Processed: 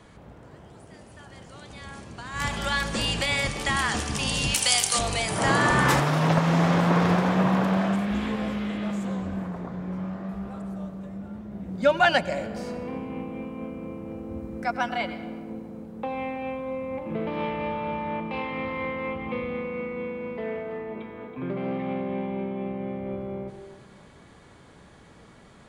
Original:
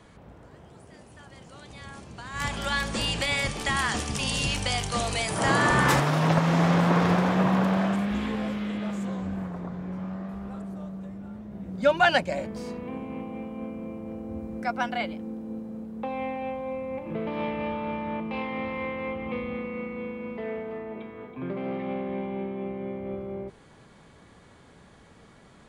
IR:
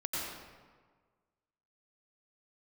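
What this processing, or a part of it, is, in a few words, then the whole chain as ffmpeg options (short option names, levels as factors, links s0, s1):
compressed reverb return: -filter_complex "[0:a]asplit=2[s0][s1];[1:a]atrim=start_sample=2205[s2];[s1][s2]afir=irnorm=-1:irlink=0,acompressor=threshold=0.0631:ratio=6,volume=0.266[s3];[s0][s3]amix=inputs=2:normalize=0,asettb=1/sr,asplit=3[s4][s5][s6];[s4]atrim=end=4.544[s7];[s5]atrim=start=4.54:end=4.99,asetpts=PTS-STARTPTS,afade=t=in:d=0.004:c=qsin,afade=t=out:st=0.446:d=0.004:c=qsin,aemphasis=mode=production:type=riaa[s8];[s6]atrim=start=4.986[s9];[s7][s8]acrossfade=d=0.004:c1=hsin:c2=qsin[s10];[s10][s9]acrossfade=d=0.004:c1=qsin:c2=hsin"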